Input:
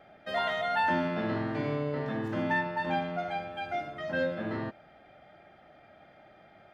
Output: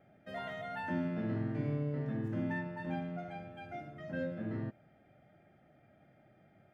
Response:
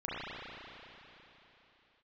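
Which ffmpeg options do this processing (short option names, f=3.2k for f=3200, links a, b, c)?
-af "equalizer=f=125:t=o:w=1:g=10,equalizer=f=250:t=o:w=1:g=4,equalizer=f=1k:t=o:w=1:g=-7,equalizer=f=4k:t=o:w=1:g=-9,volume=-8.5dB"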